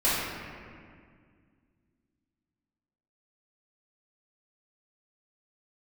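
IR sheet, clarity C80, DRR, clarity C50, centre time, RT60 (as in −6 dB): 0.0 dB, −13.0 dB, −2.5 dB, 126 ms, 2.0 s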